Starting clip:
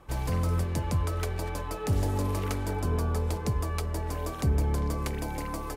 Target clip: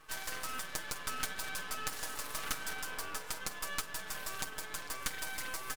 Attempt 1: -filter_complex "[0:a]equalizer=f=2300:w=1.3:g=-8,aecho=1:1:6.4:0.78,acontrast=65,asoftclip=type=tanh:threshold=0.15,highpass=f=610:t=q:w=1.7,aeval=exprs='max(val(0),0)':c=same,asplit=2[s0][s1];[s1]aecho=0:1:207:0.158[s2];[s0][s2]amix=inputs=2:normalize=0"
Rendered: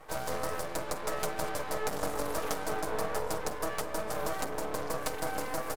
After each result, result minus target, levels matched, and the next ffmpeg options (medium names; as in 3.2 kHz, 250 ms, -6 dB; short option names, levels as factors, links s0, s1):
500 Hz band +12.5 dB; saturation: distortion +8 dB
-filter_complex "[0:a]equalizer=f=2300:w=1.3:g=-8,aecho=1:1:6.4:0.78,acontrast=65,asoftclip=type=tanh:threshold=0.15,highpass=f=1600:t=q:w=1.7,aeval=exprs='max(val(0),0)':c=same,asplit=2[s0][s1];[s1]aecho=0:1:207:0.158[s2];[s0][s2]amix=inputs=2:normalize=0"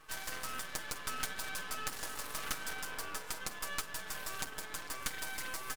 saturation: distortion +8 dB
-filter_complex "[0:a]equalizer=f=2300:w=1.3:g=-8,aecho=1:1:6.4:0.78,acontrast=65,asoftclip=type=tanh:threshold=0.299,highpass=f=1600:t=q:w=1.7,aeval=exprs='max(val(0),0)':c=same,asplit=2[s0][s1];[s1]aecho=0:1:207:0.158[s2];[s0][s2]amix=inputs=2:normalize=0"